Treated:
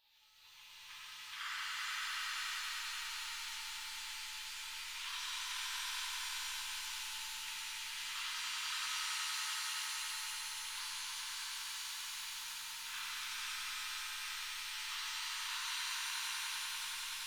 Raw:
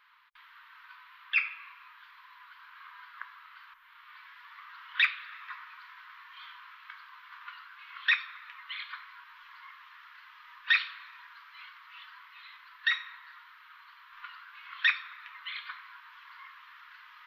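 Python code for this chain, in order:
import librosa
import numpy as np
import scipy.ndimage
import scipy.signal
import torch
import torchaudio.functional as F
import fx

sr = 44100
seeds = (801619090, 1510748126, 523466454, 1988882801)

y = fx.spec_gate(x, sr, threshold_db=-15, keep='weak')
y = fx.over_compress(y, sr, threshold_db=-46.0, ratio=-1.0)
y = fx.echo_swell(y, sr, ms=95, loudest=5, wet_db=-6.0)
y = fx.rev_shimmer(y, sr, seeds[0], rt60_s=3.1, semitones=7, shimmer_db=-2, drr_db=-7.5)
y = y * 10.0 ** (-3.5 / 20.0)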